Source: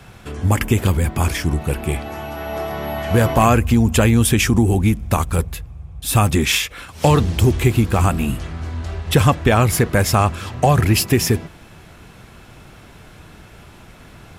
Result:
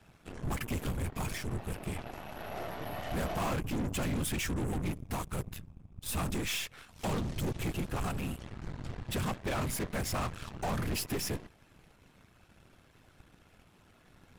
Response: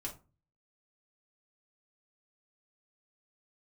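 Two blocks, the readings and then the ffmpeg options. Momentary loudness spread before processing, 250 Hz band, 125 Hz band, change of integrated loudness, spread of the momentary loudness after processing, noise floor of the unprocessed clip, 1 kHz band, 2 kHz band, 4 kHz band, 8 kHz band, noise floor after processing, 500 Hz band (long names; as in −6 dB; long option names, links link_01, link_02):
13 LU, −18.0 dB, −20.0 dB, −18.5 dB, 9 LU, −43 dBFS, −18.0 dB, −16.5 dB, −16.0 dB, −16.0 dB, −63 dBFS, −18.5 dB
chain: -af "afftfilt=real='hypot(re,im)*cos(2*PI*random(0))':imag='hypot(re,im)*sin(2*PI*random(1))':win_size=512:overlap=0.75,asoftclip=type=tanh:threshold=-21dB,aeval=exprs='0.0891*(cos(1*acos(clip(val(0)/0.0891,-1,1)))-cos(1*PI/2))+0.0126*(cos(6*acos(clip(val(0)/0.0891,-1,1)))-cos(6*PI/2))+0.00562*(cos(7*acos(clip(val(0)/0.0891,-1,1)))-cos(7*PI/2))':channel_layout=same,volume=-8dB"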